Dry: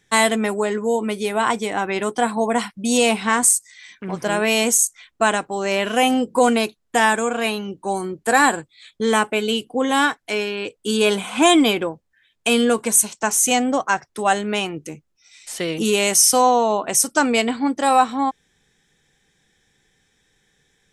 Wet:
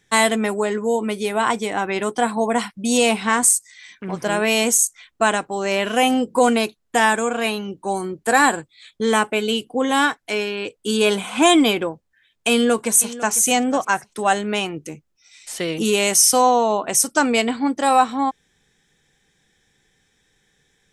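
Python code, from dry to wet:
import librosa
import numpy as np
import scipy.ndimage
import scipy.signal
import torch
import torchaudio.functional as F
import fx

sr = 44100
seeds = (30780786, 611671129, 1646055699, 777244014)

y = fx.echo_throw(x, sr, start_s=12.51, length_s=0.83, ms=500, feedback_pct=20, wet_db=-15.5)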